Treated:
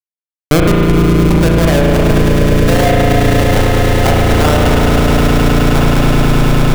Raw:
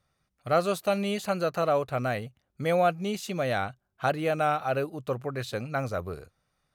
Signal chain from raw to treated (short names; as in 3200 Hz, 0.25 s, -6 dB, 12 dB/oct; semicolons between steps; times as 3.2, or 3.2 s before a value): 0.71–1.16 spectral contrast lowered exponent 0.11; dynamic EQ 530 Hz, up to -4 dB, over -35 dBFS, Q 1.1; band-pass sweep 350 Hz -> 1000 Hz, 0.55–4.3; Schmitt trigger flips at -29.5 dBFS; swelling echo 0.105 s, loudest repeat 8, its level -8.5 dB; spring tank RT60 2.6 s, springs 35 ms, chirp 60 ms, DRR -2 dB; maximiser +33 dB; gain -1 dB